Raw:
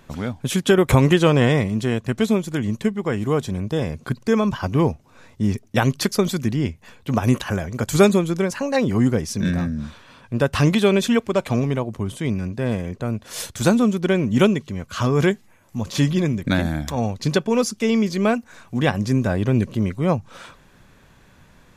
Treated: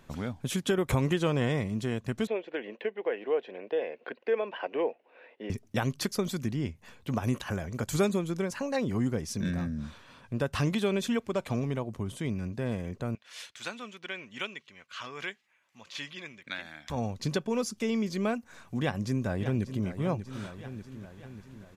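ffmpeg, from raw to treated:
-filter_complex "[0:a]asettb=1/sr,asplit=3[a][b][c];[a]atrim=end=2.274[d];[b]atrim=start=2.27:end=5.5,asetpts=PTS-STARTPTS,afade=t=in:d=0.004:c=qsin,afade=t=out:st=3.226:d=0.004:c=qsin,highpass=f=360:w=0.5412,highpass=f=360:w=1.3066,equalizer=f=490:t=q:w=4:g=8,equalizer=f=700:t=q:w=4:g=4,equalizer=f=1.2k:t=q:w=4:g=-8,equalizer=f=1.8k:t=q:w=4:g=5,equalizer=f=2.7k:t=q:w=4:g=7,lowpass=f=3k:w=0.5412,lowpass=f=3k:w=1.3066[e];[c]atrim=start=5.496[f];[d][e]acrossfade=d=0.004:c1=hsin:c2=qsin[g];[g][f]acrossfade=d=0.004:c1=qsin:c2=hsin,asettb=1/sr,asplit=3[h][i][j];[h]atrim=end=13.154[k];[i]atrim=start=13.15:end=16.9,asetpts=PTS-STARTPTS,afade=t=in:d=0.004:c=qsin,afade=t=out:st=3.746:d=0.004:c=qsin,bandpass=f=2.5k:t=q:w=1.3[l];[j]atrim=start=16.896[m];[k][l]acrossfade=d=0.004:c1=hsin:c2=qsin[n];[n][m]acrossfade=d=0.004:c1=qsin:c2=hsin,asplit=2[o][p];[p]afade=t=in:st=18.8:d=0.01,afade=t=out:st=19.87:d=0.01,aecho=0:1:590|1180|1770|2360|2950|3540:0.251189|0.138154|0.0759846|0.0417915|0.0229853|0.0126419[q];[o][q]amix=inputs=2:normalize=0,acompressor=threshold=-26dB:ratio=1.5,volume=-6.5dB"

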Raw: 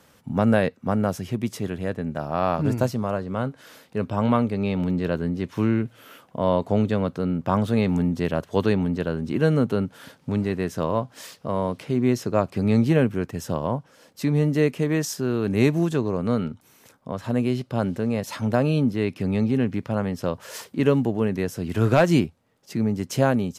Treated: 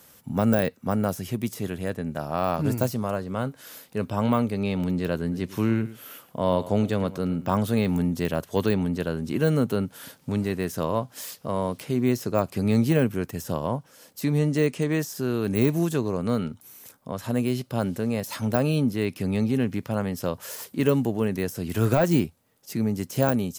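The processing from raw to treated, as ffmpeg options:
-filter_complex "[0:a]asettb=1/sr,asplit=3[a][b][c];[a]atrim=end=5.214[d];[b]atrim=start=5.21:end=7.55,asetpts=PTS-STARTPTS,afade=t=in:d=0.004:c=qsin,afade=t=out:st=2.336:d=0.004:c=qsin,aecho=1:1:108:0.158,atrim=end_sample=103194[e];[c]atrim=start=7.546[f];[d][e]acrossfade=d=0.004:c1=hsin:c2=qsin[g];[g][f]acrossfade=d=0.004:c1=qsin:c2=hsin,asettb=1/sr,asplit=3[h][i][j];[h]atrim=end=14.384[k];[i]atrim=start=14.38:end=14.99,asetpts=PTS-STARTPTS,afade=t=in:d=0.004:c=qsin,afade=t=out:st=0.606:d=0.004:c=qsin,lowpass=f=9.6k:w=0.5412,lowpass=f=9.6k:w=1.3066[l];[j]atrim=start=14.986[m];[k][l]acrossfade=d=0.004:c1=hsin:c2=qsin[n];[n][m]acrossfade=d=0.004:c1=qsin:c2=hsin,deesser=0.9,aemphasis=mode=production:type=50fm,volume=-1.5dB"

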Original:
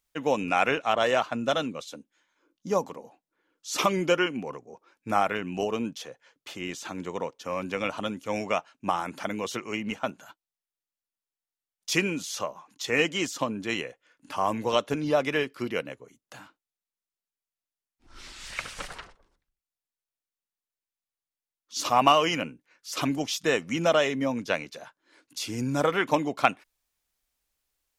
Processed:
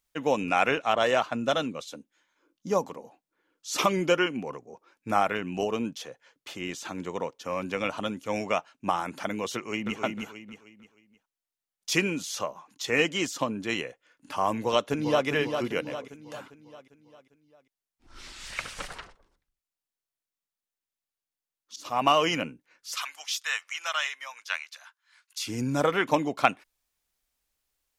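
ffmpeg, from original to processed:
-filter_complex "[0:a]asplit=2[a][b];[b]afade=t=in:st=9.55:d=0.01,afade=t=out:st=10.01:d=0.01,aecho=0:1:310|620|930|1240:0.630957|0.220835|0.0772923|0.0270523[c];[a][c]amix=inputs=2:normalize=0,asplit=2[d][e];[e]afade=t=in:st=14.58:d=0.01,afade=t=out:st=15.27:d=0.01,aecho=0:1:400|800|1200|1600|2000|2400:0.473151|0.236576|0.118288|0.0591439|0.029572|0.014786[f];[d][f]amix=inputs=2:normalize=0,asettb=1/sr,asplit=3[g][h][i];[g]atrim=end=22.954[j];[h]atrim=start=22.95:end=25.47,asetpts=PTS-STARTPTS,afade=t=in:d=0.004:c=qsin,afade=t=out:st=2.516:d=0.004:c=qsin,highpass=f=1.1k:w=0.5412,highpass=f=1.1k:w=1.3066[k];[i]atrim=start=25.466[l];[j][k]acrossfade=d=0.004:c1=hsin:c2=qsin[m];[m][l]acrossfade=d=0.004:c1=qsin:c2=hsin,asplit=2[n][o];[n]atrim=end=21.76,asetpts=PTS-STARTPTS,afade=t=out:st=21.756:d=0.004:c=hsin:silence=0.0841395[p];[o]atrim=start=21.76,asetpts=PTS-STARTPTS,afade=t=in:d=0.46:silence=0.0841395[q];[p][q]concat=n=2:v=0:a=1"

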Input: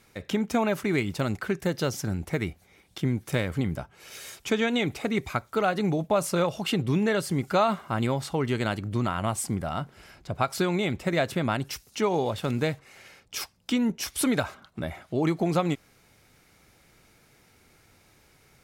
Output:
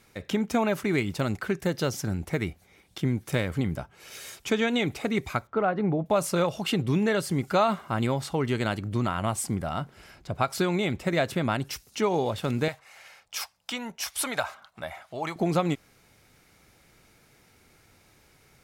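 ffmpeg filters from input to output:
-filter_complex "[0:a]asettb=1/sr,asplit=3[a][b][c];[a]atrim=end=5.474[d];[b]atrim=start=5.47:end=6.06,asetpts=PTS-STARTPTS,afade=t=in:d=0.004:c=qsin,afade=t=out:st=0.586:d=0.004:c=qsin,lowpass=1.6k[e];[c]atrim=start=6.056[f];[d][e]acrossfade=d=0.004:c1=hsin:c2=qsin[g];[g][f]acrossfade=d=0.004:c1=qsin:c2=hsin,asettb=1/sr,asplit=3[h][i][j];[h]atrim=end=12.684[k];[i]atrim=start=12.68:end=15.36,asetpts=PTS-STARTPTS,afade=t=in:d=0.004:c=qsin,afade=t=out:st=2.676:d=0.004:c=qsin,lowshelf=f=500:t=q:w=1.5:g=-11.5[l];[j]atrim=start=15.356[m];[k][l]acrossfade=d=0.004:c1=hsin:c2=qsin[n];[n][m]acrossfade=d=0.004:c1=qsin:c2=hsin"

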